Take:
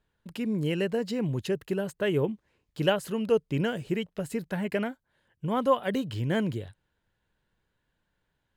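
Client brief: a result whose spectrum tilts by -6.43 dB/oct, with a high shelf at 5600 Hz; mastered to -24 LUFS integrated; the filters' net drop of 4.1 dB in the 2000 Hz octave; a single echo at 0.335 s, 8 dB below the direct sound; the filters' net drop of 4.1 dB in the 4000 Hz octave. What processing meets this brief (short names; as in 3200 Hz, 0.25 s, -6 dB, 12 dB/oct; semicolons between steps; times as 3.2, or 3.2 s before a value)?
bell 2000 Hz -5 dB; bell 4000 Hz -5.5 dB; high shelf 5600 Hz +6 dB; echo 0.335 s -8 dB; gain +5.5 dB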